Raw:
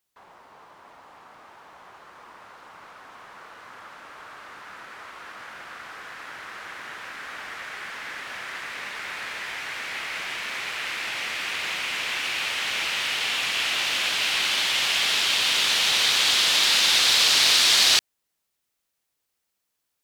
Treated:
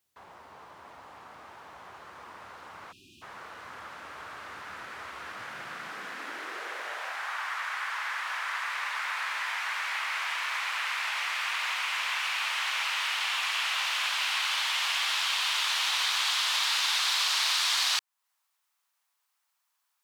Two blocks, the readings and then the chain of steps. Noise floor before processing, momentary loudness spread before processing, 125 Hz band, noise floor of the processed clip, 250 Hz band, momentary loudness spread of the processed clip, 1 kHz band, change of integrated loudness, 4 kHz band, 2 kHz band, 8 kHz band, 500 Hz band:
-79 dBFS, 22 LU, under -10 dB, -78 dBFS, under -10 dB, 20 LU, 0.0 dB, -7.5 dB, -7.5 dB, -3.5 dB, -8.0 dB, -8.5 dB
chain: spectral delete 2.92–3.22, 400–2400 Hz; compressor 2:1, threshold -33 dBFS, peak gain reduction 10 dB; high-pass sweep 70 Hz -> 1000 Hz, 5.15–7.41

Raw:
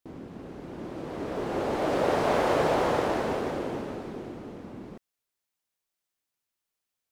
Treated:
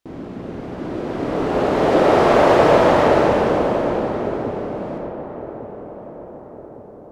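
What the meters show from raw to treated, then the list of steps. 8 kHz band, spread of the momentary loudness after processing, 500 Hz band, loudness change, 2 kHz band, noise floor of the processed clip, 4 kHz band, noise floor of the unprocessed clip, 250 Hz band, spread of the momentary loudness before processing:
n/a, 20 LU, +12.5 dB, +11.0 dB, +10.5 dB, -39 dBFS, +9.0 dB, under -85 dBFS, +12.0 dB, 18 LU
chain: high shelf 8500 Hz -10 dB; on a send: darkening echo 1.157 s, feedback 53%, low-pass 1200 Hz, level -12 dB; on the sum: digital reverb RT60 2.2 s, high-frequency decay 0.45×, pre-delay 5 ms, DRR -0.5 dB; gain +8 dB

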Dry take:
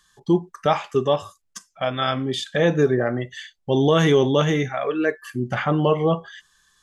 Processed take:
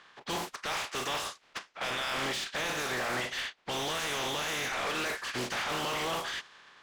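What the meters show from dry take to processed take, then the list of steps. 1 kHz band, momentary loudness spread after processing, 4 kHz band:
-8.0 dB, 6 LU, -2.5 dB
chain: spectral contrast lowered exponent 0.32; low-pass opened by the level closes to 2700 Hz, open at -17.5 dBFS; reverse; compressor 6:1, threshold -26 dBFS, peak gain reduction 13.5 dB; reverse; limiter -22 dBFS, peak gain reduction 9.5 dB; overdrive pedal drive 23 dB, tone 3400 Hz, clips at -22 dBFS; gain -3.5 dB

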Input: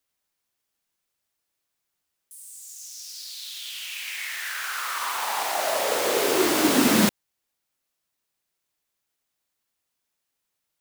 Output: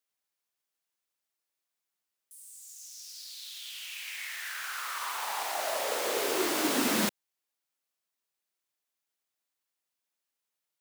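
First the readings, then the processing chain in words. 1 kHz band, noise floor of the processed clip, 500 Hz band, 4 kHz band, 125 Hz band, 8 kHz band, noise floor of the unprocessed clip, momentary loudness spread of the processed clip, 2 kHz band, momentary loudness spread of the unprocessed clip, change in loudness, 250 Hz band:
-7.0 dB, under -85 dBFS, -8.0 dB, -6.5 dB, -12.5 dB, -6.5 dB, -81 dBFS, 17 LU, -6.5 dB, 18 LU, -7.5 dB, -10.0 dB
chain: HPF 300 Hz 6 dB/oct; gain -6.5 dB

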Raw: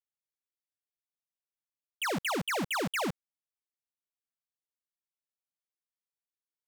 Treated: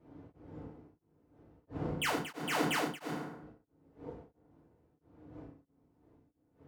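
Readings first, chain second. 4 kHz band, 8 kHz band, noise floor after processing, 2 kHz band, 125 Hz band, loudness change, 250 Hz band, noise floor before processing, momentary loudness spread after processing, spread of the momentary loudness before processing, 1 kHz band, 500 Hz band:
-2.5 dB, -3.5 dB, -77 dBFS, -3.0 dB, +0.5 dB, -4.5 dB, -0.5 dB, under -85 dBFS, 22 LU, 6 LU, -2.0 dB, -2.0 dB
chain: wind noise 350 Hz -47 dBFS; HPF 57 Hz; spectral noise reduction 8 dB; compressor, threshold -35 dBFS, peak gain reduction 6 dB; FDN reverb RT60 0.82 s, low-frequency decay 1×, high-frequency decay 0.6×, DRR -4.5 dB; beating tremolo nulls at 1.5 Hz; gain -1 dB

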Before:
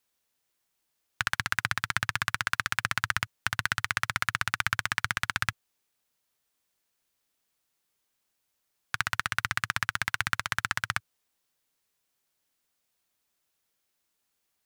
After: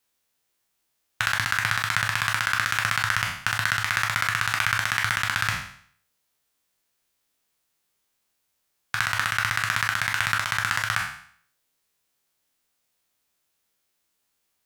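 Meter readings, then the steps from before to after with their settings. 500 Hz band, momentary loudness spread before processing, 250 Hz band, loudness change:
+6.0 dB, 3 LU, +3.0 dB, +5.5 dB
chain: spectral trails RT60 0.57 s; gain +1.5 dB

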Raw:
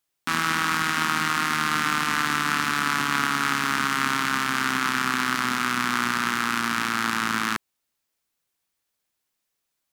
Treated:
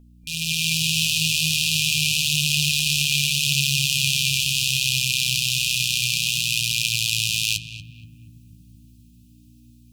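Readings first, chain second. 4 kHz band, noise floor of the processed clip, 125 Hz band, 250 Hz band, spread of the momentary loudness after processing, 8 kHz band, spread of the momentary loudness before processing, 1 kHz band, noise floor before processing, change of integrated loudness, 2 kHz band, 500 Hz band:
+10.5 dB, -51 dBFS, +10.0 dB, -5.5 dB, 3 LU, +10.5 dB, 2 LU, under -40 dB, -80 dBFS, +4.0 dB, -1.5 dB, under -35 dB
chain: FFT band-reject 170–2400 Hz; low shelf 110 Hz -9.5 dB; AGC gain up to 14 dB; hum 60 Hz, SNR 25 dB; flange 0.34 Hz, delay 4.2 ms, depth 6.8 ms, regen +46%; darkening echo 0.237 s, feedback 73%, low-pass 910 Hz, level -3.5 dB; gain +4.5 dB

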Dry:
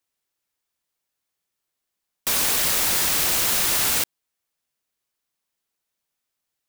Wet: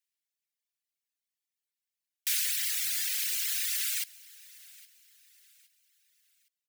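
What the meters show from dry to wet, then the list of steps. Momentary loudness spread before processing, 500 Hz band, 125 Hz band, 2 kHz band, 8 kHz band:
5 LU, under -40 dB, under -40 dB, -10.5 dB, -9.0 dB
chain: reverb removal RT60 1.9 s; steep high-pass 1700 Hz 36 dB/oct; feedback echo 0.815 s, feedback 37%, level -22 dB; gain -6 dB

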